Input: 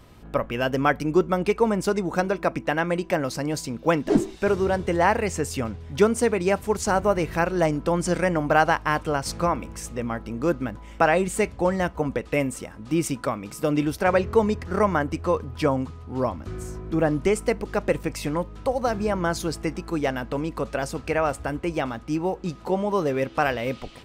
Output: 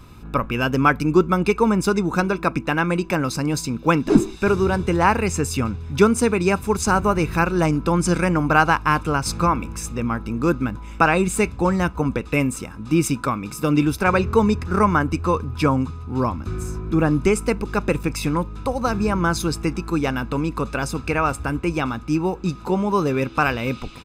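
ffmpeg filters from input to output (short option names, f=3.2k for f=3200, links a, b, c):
-af "aecho=1:1:0.8:0.57,volume=3.5dB"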